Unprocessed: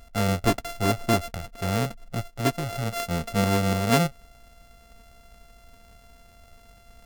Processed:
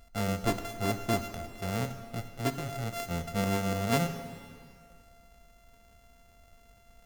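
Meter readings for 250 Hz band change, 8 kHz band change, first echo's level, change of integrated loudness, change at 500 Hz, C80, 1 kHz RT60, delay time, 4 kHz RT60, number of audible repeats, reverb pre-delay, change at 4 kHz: -6.5 dB, -6.5 dB, no echo, -6.5 dB, -6.0 dB, 10.5 dB, 2.1 s, no echo, 1.9 s, no echo, 6 ms, -7.0 dB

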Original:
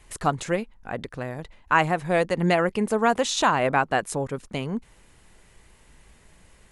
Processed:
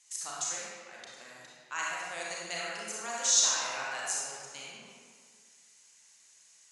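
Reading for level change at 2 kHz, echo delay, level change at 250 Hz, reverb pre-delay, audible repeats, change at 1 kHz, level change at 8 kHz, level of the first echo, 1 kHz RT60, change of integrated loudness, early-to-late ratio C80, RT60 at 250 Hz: -10.0 dB, no echo, -27.0 dB, 29 ms, no echo, -15.5 dB, +7.5 dB, no echo, 2.0 s, -6.0 dB, -1.0 dB, 1.8 s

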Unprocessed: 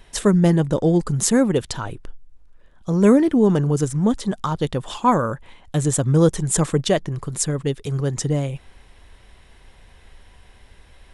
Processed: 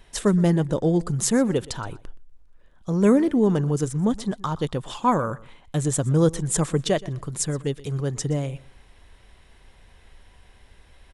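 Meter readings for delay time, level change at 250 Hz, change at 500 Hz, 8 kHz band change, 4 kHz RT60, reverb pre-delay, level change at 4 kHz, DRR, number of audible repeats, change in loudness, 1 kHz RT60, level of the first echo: 122 ms, -3.5 dB, -3.5 dB, -3.5 dB, no reverb, no reverb, -3.5 dB, no reverb, 2, -3.5 dB, no reverb, -20.5 dB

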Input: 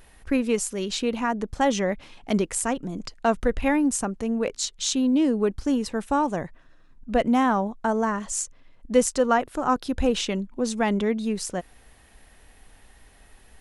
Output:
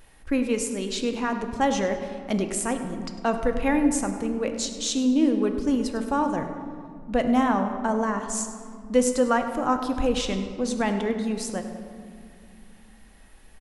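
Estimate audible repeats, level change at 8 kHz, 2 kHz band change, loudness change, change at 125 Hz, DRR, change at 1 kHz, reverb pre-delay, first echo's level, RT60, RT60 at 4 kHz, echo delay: 1, -1.5 dB, -1.0 dB, -0.5 dB, -1.0 dB, 5.5 dB, -1.0 dB, 4 ms, -14.5 dB, 2.3 s, 1.2 s, 101 ms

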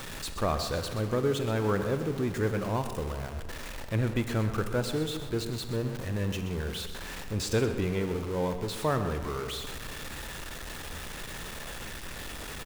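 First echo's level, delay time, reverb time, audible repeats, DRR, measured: -11.5 dB, 127 ms, 1.8 s, 1, 7.0 dB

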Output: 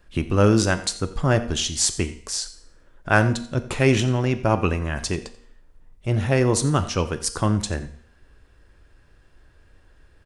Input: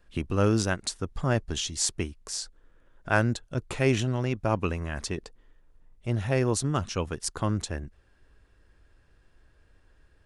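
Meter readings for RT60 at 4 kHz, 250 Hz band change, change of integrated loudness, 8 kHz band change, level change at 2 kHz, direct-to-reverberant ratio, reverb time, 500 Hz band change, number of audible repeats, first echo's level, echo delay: 0.60 s, +6.5 dB, +6.5 dB, +6.5 dB, +6.5 dB, 9.5 dB, 0.65 s, +6.0 dB, 1, -18.0 dB, 87 ms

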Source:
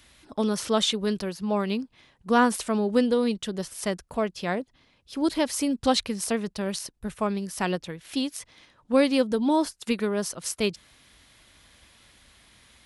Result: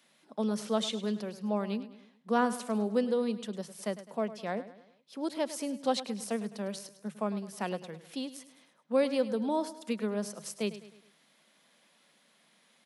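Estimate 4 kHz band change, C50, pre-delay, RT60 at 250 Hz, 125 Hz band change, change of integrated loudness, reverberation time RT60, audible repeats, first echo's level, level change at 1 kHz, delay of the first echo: -10.0 dB, no reverb, no reverb, no reverb, -6.5 dB, -7.0 dB, no reverb, 4, -14.5 dB, -7.0 dB, 104 ms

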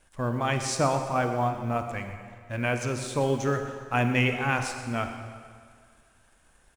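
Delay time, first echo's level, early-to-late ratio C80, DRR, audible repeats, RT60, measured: 125 ms, -15.0 dB, 7.5 dB, 6.0 dB, 1, 2.0 s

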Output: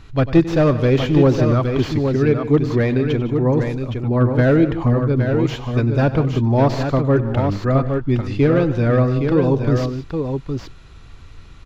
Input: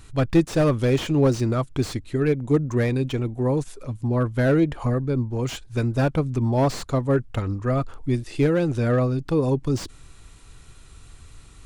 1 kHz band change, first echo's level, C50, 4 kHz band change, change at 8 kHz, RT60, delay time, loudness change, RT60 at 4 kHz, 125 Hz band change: +5.5 dB, -15.5 dB, no reverb, +3.0 dB, no reading, no reverb, 96 ms, +5.5 dB, no reverb, +6.0 dB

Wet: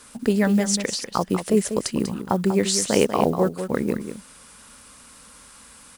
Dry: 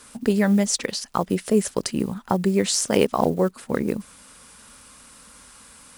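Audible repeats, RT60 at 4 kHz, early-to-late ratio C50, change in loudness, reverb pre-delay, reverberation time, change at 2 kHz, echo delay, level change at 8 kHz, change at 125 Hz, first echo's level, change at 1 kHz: 1, no reverb, no reverb, +0.5 dB, no reverb, no reverb, +0.5 dB, 193 ms, +0.5 dB, 0.0 dB, -9.0 dB, +0.5 dB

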